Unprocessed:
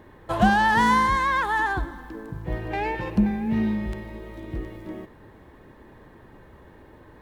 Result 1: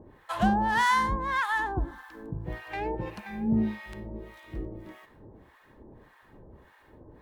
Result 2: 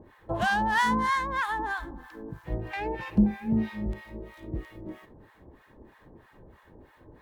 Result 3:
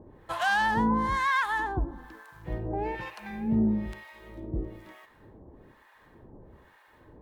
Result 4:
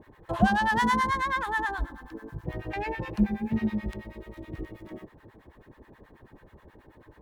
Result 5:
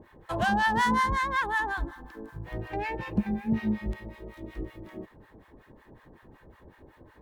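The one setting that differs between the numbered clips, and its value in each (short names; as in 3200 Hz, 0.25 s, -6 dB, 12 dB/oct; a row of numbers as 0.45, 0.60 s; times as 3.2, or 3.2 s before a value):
harmonic tremolo, rate: 1.7, 3.1, 1.1, 9.3, 5.4 Hz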